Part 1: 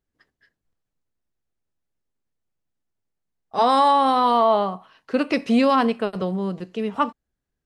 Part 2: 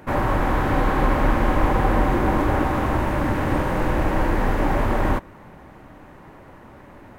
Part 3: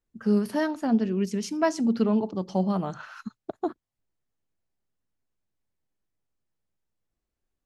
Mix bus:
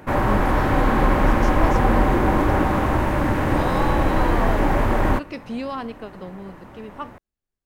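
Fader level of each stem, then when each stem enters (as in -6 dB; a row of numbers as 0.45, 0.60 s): -11.5, +1.5, -6.5 dB; 0.00, 0.00, 0.00 s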